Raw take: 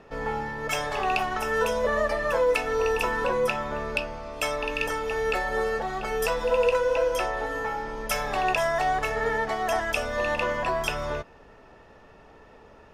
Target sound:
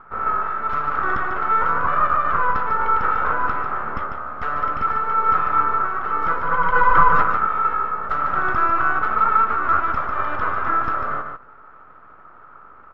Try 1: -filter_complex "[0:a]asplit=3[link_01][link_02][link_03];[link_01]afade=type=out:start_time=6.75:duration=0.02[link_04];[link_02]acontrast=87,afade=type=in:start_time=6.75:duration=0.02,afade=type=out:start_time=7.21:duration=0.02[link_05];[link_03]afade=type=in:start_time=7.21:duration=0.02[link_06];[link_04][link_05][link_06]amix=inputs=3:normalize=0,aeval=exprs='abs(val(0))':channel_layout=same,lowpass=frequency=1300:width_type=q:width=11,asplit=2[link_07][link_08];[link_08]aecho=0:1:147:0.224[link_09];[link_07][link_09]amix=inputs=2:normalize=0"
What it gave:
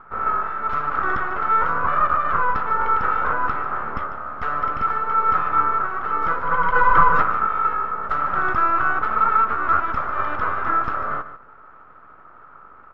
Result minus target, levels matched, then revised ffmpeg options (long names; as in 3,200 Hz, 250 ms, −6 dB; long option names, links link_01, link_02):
echo-to-direct −6.5 dB
-filter_complex "[0:a]asplit=3[link_01][link_02][link_03];[link_01]afade=type=out:start_time=6.75:duration=0.02[link_04];[link_02]acontrast=87,afade=type=in:start_time=6.75:duration=0.02,afade=type=out:start_time=7.21:duration=0.02[link_05];[link_03]afade=type=in:start_time=7.21:duration=0.02[link_06];[link_04][link_05][link_06]amix=inputs=3:normalize=0,aeval=exprs='abs(val(0))':channel_layout=same,lowpass=frequency=1300:width_type=q:width=11,asplit=2[link_07][link_08];[link_08]aecho=0:1:147:0.473[link_09];[link_07][link_09]amix=inputs=2:normalize=0"